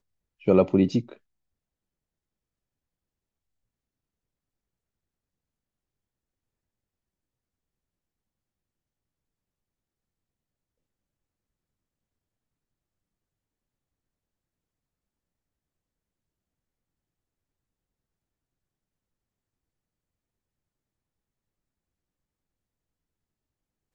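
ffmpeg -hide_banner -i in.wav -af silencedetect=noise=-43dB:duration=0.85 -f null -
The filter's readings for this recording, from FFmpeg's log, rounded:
silence_start: 1.13
silence_end: 23.94 | silence_duration: 22.81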